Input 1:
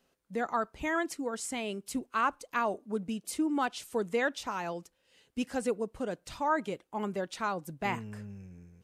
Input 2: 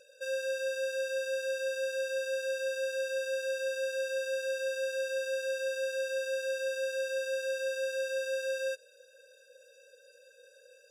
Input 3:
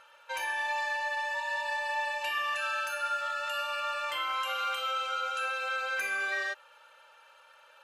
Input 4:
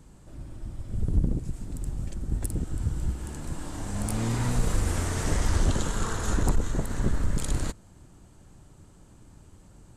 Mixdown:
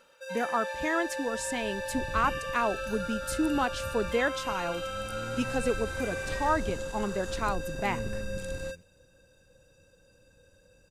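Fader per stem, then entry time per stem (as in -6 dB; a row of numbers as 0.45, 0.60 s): +2.0, -5.0, -7.5, -13.0 dB; 0.00, 0.00, 0.00, 1.00 s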